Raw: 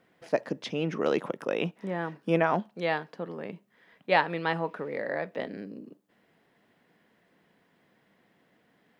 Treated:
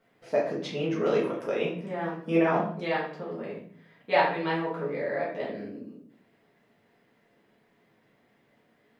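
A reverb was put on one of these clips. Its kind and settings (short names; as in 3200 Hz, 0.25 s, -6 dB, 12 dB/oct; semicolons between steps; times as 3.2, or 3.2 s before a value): shoebox room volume 76 m³, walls mixed, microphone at 1.6 m; gain -7 dB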